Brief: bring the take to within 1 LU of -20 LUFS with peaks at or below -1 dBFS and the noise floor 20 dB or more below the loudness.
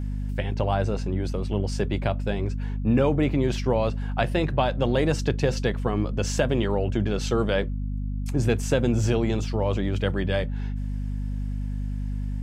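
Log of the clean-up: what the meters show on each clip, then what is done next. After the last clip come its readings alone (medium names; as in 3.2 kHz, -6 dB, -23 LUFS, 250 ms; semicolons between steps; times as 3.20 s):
hum 50 Hz; highest harmonic 250 Hz; hum level -26 dBFS; loudness -26.0 LUFS; peak level -8.5 dBFS; loudness target -20.0 LUFS
-> hum notches 50/100/150/200/250 Hz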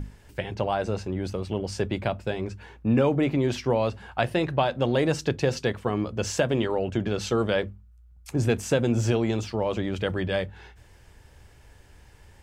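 hum not found; loudness -26.5 LUFS; peak level -8.5 dBFS; loudness target -20.0 LUFS
-> trim +6.5 dB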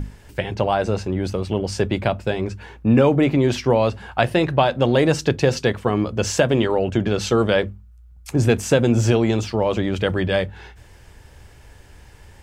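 loudness -20.0 LUFS; peak level -2.0 dBFS; noise floor -47 dBFS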